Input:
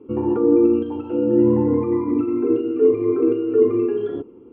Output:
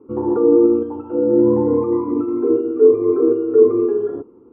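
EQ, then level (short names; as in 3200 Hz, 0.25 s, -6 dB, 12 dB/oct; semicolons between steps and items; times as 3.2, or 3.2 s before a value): dynamic EQ 470 Hz, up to +7 dB, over -28 dBFS, Q 1.3; synth low-pass 1200 Hz, resonance Q 1.8; -3.0 dB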